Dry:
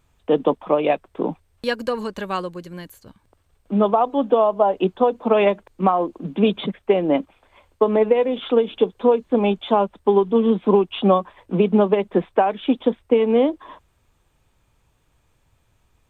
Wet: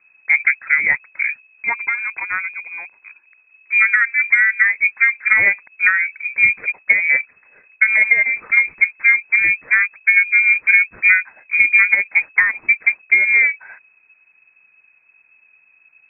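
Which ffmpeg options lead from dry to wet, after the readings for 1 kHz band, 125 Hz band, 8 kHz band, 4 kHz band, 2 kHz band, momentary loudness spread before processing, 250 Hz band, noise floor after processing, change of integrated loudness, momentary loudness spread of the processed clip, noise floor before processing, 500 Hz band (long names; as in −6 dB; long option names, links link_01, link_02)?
−10.5 dB, below −15 dB, can't be measured, below −40 dB, +25.0 dB, 10 LU, below −25 dB, −56 dBFS, +6.0 dB, 10 LU, −64 dBFS, below −25 dB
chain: -af "lowshelf=frequency=110:gain=9,lowpass=frequency=2200:width_type=q:width=0.5098,lowpass=frequency=2200:width_type=q:width=0.6013,lowpass=frequency=2200:width_type=q:width=0.9,lowpass=frequency=2200:width_type=q:width=2.563,afreqshift=-2600,volume=2dB"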